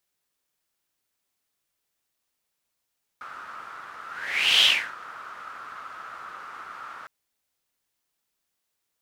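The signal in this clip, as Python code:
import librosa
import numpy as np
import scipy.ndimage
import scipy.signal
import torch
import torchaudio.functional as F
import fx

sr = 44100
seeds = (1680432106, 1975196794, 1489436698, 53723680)

y = fx.whoosh(sr, seeds[0], length_s=3.86, peak_s=1.42, rise_s=0.61, fall_s=0.34, ends_hz=1300.0, peak_hz=3200.0, q=6.7, swell_db=23)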